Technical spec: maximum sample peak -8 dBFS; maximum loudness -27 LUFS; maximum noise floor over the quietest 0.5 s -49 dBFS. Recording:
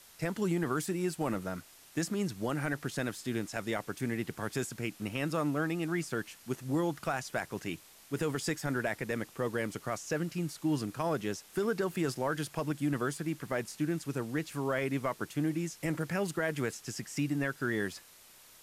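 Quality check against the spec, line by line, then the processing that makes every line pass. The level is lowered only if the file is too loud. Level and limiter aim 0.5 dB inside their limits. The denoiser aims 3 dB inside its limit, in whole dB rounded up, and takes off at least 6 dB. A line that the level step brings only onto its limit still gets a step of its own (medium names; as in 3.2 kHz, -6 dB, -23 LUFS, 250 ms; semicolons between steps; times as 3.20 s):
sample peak -20.0 dBFS: pass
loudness -34.5 LUFS: pass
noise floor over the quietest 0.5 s -57 dBFS: pass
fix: none needed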